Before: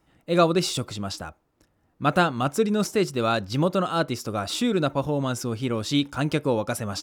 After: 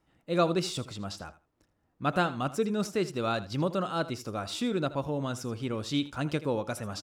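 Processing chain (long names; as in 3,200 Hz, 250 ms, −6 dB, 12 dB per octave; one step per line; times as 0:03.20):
high-shelf EQ 11,000 Hz −7 dB
repeating echo 80 ms, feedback 17%, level −16 dB
level −6.5 dB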